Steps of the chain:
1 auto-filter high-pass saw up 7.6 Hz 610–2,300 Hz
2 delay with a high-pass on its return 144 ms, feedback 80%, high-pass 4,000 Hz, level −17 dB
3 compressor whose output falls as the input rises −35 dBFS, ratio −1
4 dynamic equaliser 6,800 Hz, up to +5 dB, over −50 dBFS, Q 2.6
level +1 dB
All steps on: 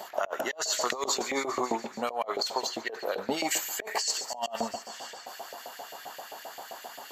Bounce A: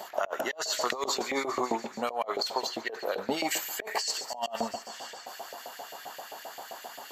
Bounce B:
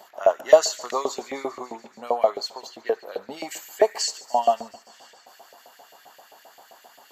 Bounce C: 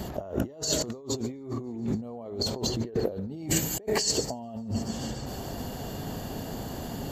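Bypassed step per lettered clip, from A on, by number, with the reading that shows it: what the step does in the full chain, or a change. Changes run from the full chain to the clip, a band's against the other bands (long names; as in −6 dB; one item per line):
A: 4, change in momentary loudness spread −1 LU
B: 3, change in crest factor +3.0 dB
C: 1, 125 Hz band +22.0 dB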